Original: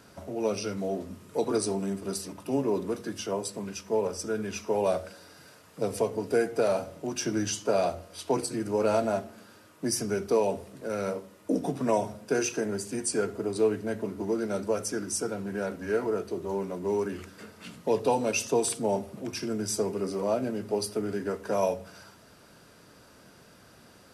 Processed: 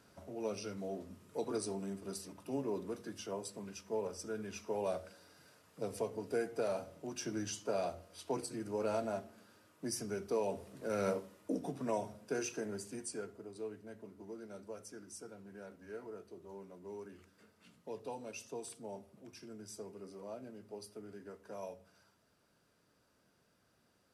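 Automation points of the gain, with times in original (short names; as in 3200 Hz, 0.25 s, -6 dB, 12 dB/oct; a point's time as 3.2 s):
10.36 s -10.5 dB
11.11 s -2.5 dB
11.58 s -10.5 dB
12.84 s -10.5 dB
13.48 s -19 dB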